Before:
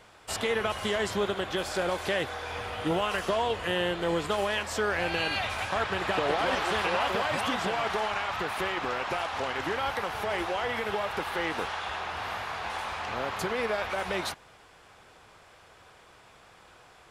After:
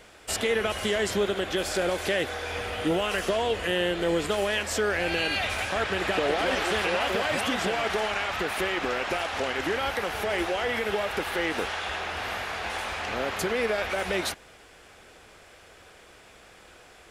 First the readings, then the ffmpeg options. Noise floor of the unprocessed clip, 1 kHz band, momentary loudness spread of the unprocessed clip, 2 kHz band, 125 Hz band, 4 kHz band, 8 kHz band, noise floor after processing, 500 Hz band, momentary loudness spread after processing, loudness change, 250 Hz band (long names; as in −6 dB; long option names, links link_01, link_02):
−56 dBFS, −0.5 dB, 7 LU, +3.0 dB, +1.5 dB, +3.0 dB, +5.5 dB, −52 dBFS, +3.0 dB, 6 LU, +2.5 dB, +3.5 dB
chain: -filter_complex "[0:a]equalizer=frequency=125:width_type=o:width=1:gain=-8,equalizer=frequency=1000:width_type=o:width=1:gain=-9,equalizer=frequency=4000:width_type=o:width=1:gain=-3,asplit=2[link_01][link_02];[link_02]alimiter=level_in=2dB:limit=-24dB:level=0:latency=1,volume=-2dB,volume=0dB[link_03];[link_01][link_03]amix=inputs=2:normalize=0,volume=1dB"